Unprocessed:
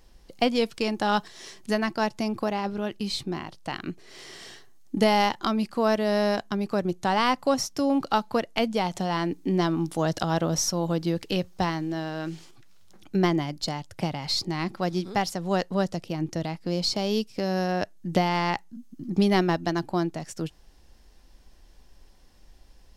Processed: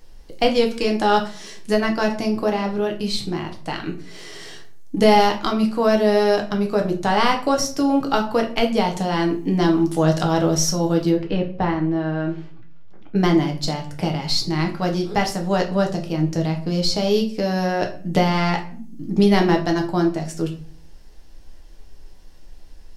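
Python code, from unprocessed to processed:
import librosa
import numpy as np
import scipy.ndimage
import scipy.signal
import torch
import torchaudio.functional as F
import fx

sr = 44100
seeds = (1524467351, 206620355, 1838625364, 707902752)

y = fx.lowpass(x, sr, hz=2100.0, slope=12, at=(11.1, 13.16))
y = fx.room_shoebox(y, sr, seeds[0], volume_m3=38.0, walls='mixed', distance_m=0.48)
y = y * 10.0 ** (3.0 / 20.0)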